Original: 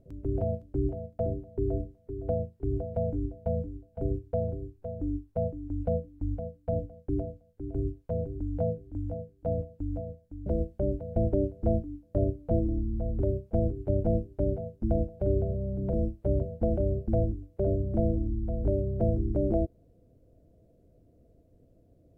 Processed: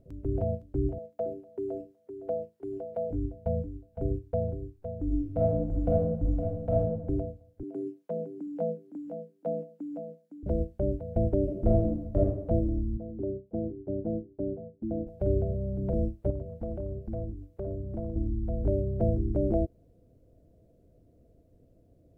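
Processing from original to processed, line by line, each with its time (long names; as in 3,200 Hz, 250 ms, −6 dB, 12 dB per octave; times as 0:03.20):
0:00.98–0:03.11: high-pass filter 340 Hz
0:05.05–0:06.82: thrown reverb, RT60 1 s, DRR −4.5 dB
0:07.63–0:10.43: Butterworth high-pass 170 Hz 48 dB per octave
0:11.43–0:12.18: thrown reverb, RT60 0.93 s, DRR −2 dB
0:12.97–0:15.07: resonant band-pass 300 Hz, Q 1.3
0:16.30–0:18.16: downward compressor 2 to 1, threshold −37 dBFS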